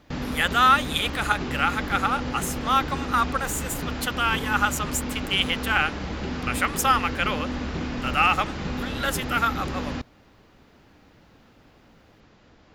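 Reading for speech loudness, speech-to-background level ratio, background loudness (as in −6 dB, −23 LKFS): −24.5 LKFS, 6.5 dB, −31.0 LKFS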